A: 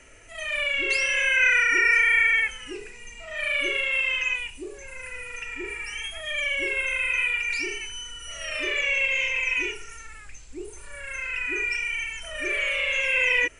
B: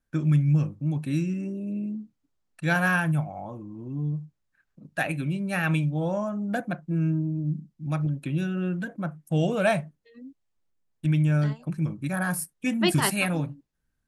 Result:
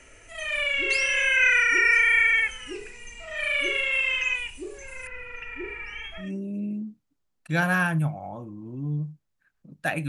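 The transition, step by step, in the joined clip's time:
A
5.07–6.31 LPF 2300 Hz 12 dB/oct
6.24 switch to B from 1.37 s, crossfade 0.14 s

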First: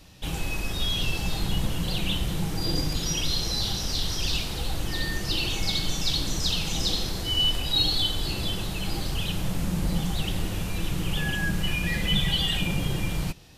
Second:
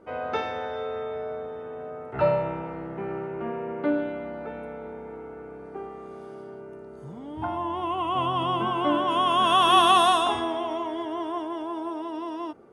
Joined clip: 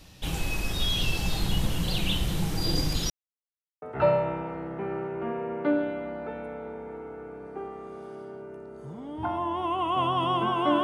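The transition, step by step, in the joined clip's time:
first
3.1–3.82 mute
3.82 switch to second from 2.01 s

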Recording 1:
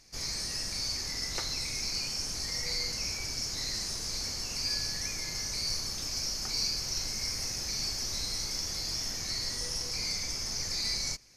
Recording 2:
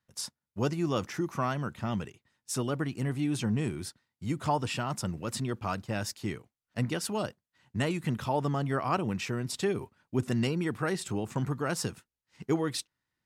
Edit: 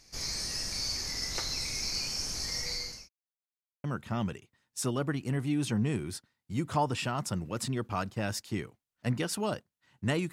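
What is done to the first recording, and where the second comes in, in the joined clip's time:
recording 1
2.44–3.09 fade out equal-power
3.09–3.84 mute
3.84 switch to recording 2 from 1.56 s

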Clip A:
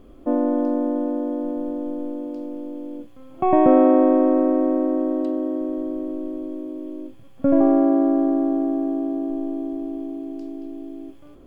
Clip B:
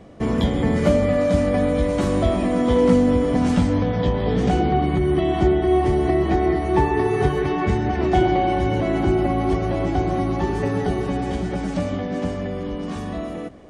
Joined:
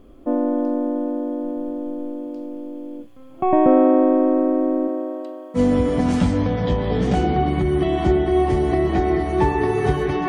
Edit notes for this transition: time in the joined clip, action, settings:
clip A
4.87–5.6 HPF 290 Hz -> 1000 Hz
5.57 switch to clip B from 2.93 s, crossfade 0.06 s

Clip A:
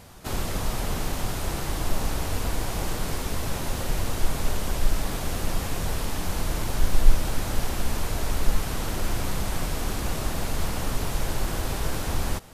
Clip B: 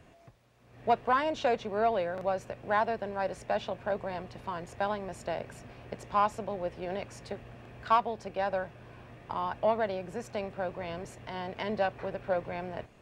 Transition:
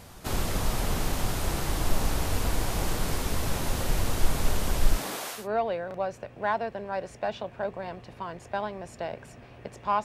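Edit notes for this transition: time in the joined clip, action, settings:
clip A
4.96–5.48 HPF 160 Hz -> 1400 Hz
5.39 switch to clip B from 1.66 s, crossfade 0.18 s

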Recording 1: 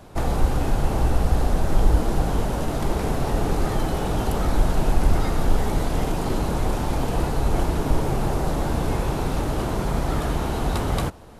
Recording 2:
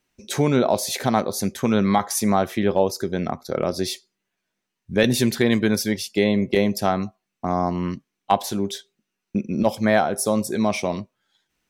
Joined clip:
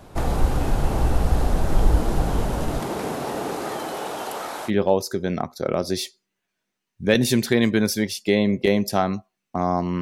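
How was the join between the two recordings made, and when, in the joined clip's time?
recording 1
2.79–4.71 HPF 170 Hz -> 720 Hz
4.68 switch to recording 2 from 2.57 s, crossfade 0.06 s

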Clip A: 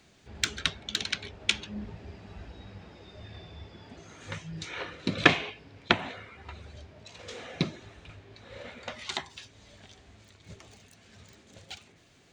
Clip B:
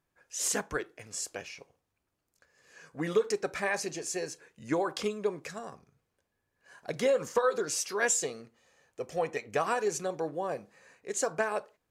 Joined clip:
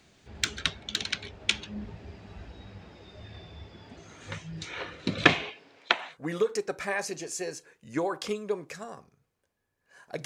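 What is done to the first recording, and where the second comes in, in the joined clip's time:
clip A
5.48–6.18 HPF 240 Hz -> 990 Hz
6.11 switch to clip B from 2.86 s, crossfade 0.14 s

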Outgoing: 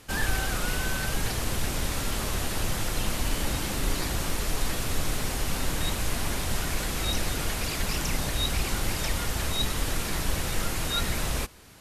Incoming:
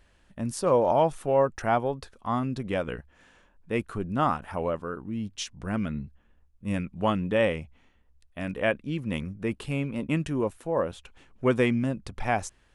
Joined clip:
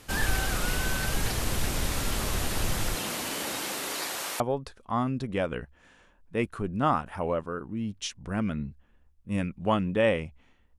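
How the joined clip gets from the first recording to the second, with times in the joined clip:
outgoing
2.95–4.4 HPF 190 Hz -> 640 Hz
4.4 switch to incoming from 1.76 s

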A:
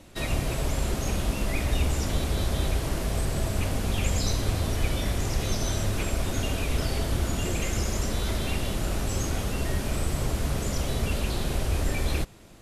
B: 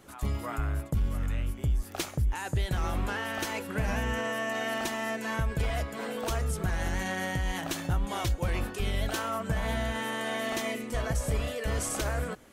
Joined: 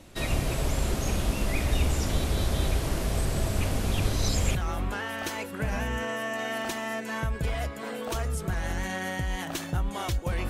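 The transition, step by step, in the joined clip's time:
A
4–4.55 reverse
4.55 switch to B from 2.71 s

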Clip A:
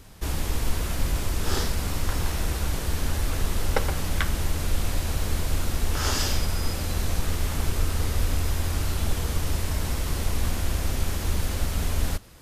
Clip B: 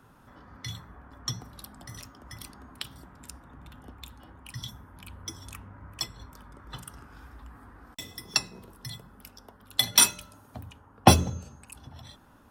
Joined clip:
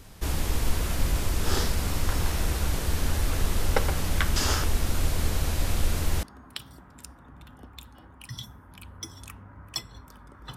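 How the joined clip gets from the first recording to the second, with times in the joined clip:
clip A
4.36–6.23 reverse
6.23 switch to clip B from 2.48 s

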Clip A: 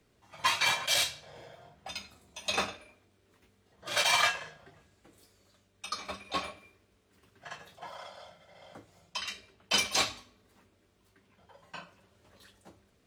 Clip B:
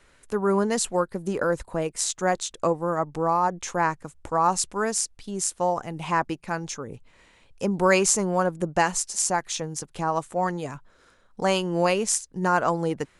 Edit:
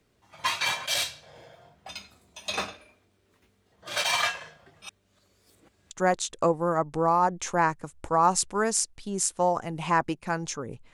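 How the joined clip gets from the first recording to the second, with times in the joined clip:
clip A
4.82–5.91 reverse
5.91 switch to clip B from 2.12 s

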